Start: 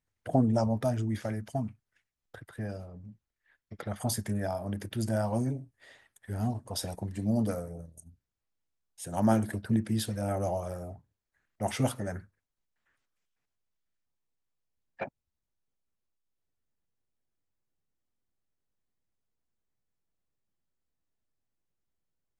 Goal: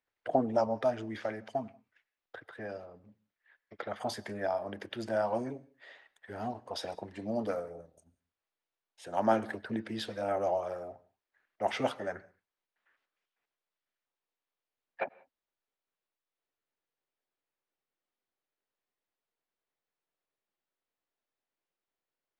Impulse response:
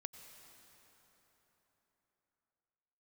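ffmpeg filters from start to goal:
-filter_complex "[0:a]acrossover=split=320 4600:gain=0.1 1 0.0708[a][b][c];[a][b][c]amix=inputs=3:normalize=0,asplit=2[d][e];[1:a]atrim=start_sample=2205,afade=t=out:st=0.25:d=0.01,atrim=end_sample=11466[f];[e][f]afir=irnorm=-1:irlink=0,volume=-4dB[g];[d][g]amix=inputs=2:normalize=0"

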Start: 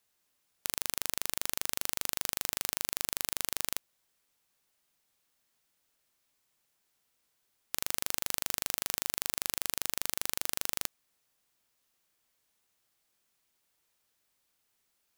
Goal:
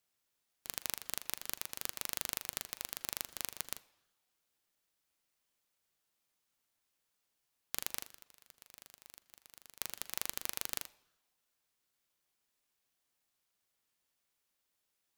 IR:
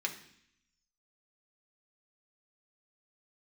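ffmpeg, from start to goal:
-filter_complex "[0:a]asplit=3[a][b][c];[a]afade=t=out:st=8.04:d=0.02[d];[b]asoftclip=type=hard:threshold=-21dB,afade=t=in:st=8.04:d=0.02,afade=t=out:st=9.78:d=0.02[e];[c]afade=t=in:st=9.78:d=0.02[f];[d][e][f]amix=inputs=3:normalize=0,asplit=2[g][h];[1:a]atrim=start_sample=2205,asetrate=35721,aresample=44100[i];[h][i]afir=irnorm=-1:irlink=0,volume=-15dB[j];[g][j]amix=inputs=2:normalize=0,aeval=exprs='val(0)*sin(2*PI*1100*n/s+1100*0.35/2.7*sin(2*PI*2.7*n/s))':c=same,volume=-4.5dB"

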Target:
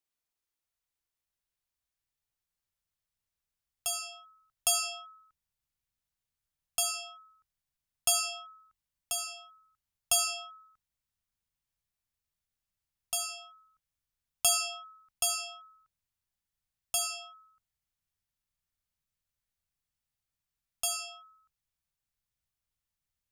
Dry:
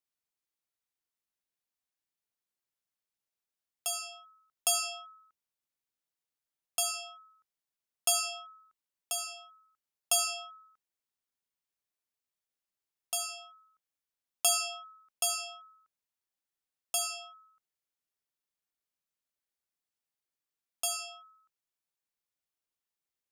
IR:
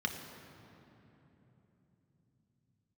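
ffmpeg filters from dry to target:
-af "asubboost=boost=10:cutoff=110,volume=1dB"

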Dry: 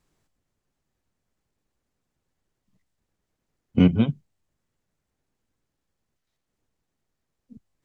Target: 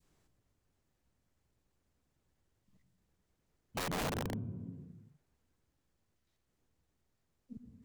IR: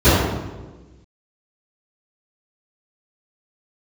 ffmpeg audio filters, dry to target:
-filter_complex "[0:a]asplit=2[a][b];[1:a]atrim=start_sample=2205,lowpass=2.4k,adelay=82[c];[b][c]afir=irnorm=-1:irlink=0,volume=-39.5dB[d];[a][d]amix=inputs=2:normalize=0,acompressor=threshold=-40dB:ratio=2,adynamicequalizer=threshold=0.00126:dfrequency=1200:dqfactor=0.72:tfrequency=1200:tqfactor=0.72:attack=5:release=100:ratio=0.375:range=3:mode=boostabove:tftype=bell,aeval=exprs='(mod(29.9*val(0)+1,2)-1)/29.9':c=same,volume=-1.5dB"

